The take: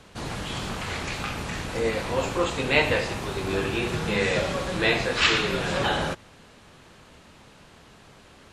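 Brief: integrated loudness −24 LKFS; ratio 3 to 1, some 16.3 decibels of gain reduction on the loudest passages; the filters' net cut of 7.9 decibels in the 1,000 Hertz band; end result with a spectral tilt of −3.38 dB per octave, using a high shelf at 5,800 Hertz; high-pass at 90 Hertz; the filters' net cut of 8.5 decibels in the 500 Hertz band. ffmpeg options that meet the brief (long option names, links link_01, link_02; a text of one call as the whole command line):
ffmpeg -i in.wav -af "highpass=90,equalizer=frequency=500:width_type=o:gain=-8.5,equalizer=frequency=1000:width_type=o:gain=-8,highshelf=frequency=5800:gain=4,acompressor=threshold=-40dB:ratio=3,volume=15dB" out.wav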